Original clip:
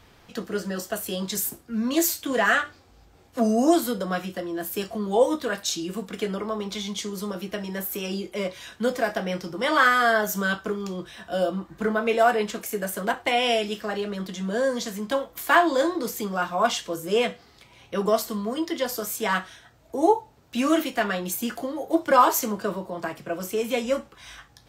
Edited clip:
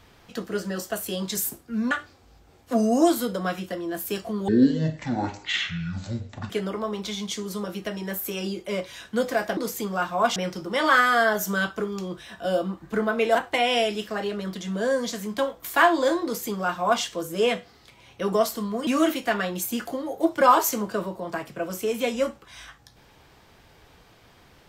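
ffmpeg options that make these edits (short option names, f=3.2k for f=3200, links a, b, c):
-filter_complex "[0:a]asplit=8[a][b][c][d][e][f][g][h];[a]atrim=end=1.912[i];[b]atrim=start=2.568:end=5.144[j];[c]atrim=start=5.14:end=6.17,asetpts=PTS-STARTPTS,asetrate=22491,aresample=44100[k];[d]atrim=start=6.166:end=9.242[l];[e]atrim=start=15.968:end=16.762[m];[f]atrim=start=9.238:end=12.232[n];[g]atrim=start=13.078:end=18.602[o];[h]atrim=start=20.568[p];[i][j]acrossfade=d=0.004:c1=hsin:c2=hsin[q];[q][k]acrossfade=d=0.004:c1=hsin:c2=hsin[r];[r][l]acrossfade=d=0.004:c1=hsin:c2=hsin[s];[s][m]acrossfade=d=0.004:c1=hsin:c2=hsin[t];[t][n]acrossfade=d=0.004:c1=hsin:c2=hsin[u];[u][o]acrossfade=d=0.004:c1=hsin:c2=hsin[v];[v][p]acrossfade=d=0.004:c1=hsin:c2=hsin"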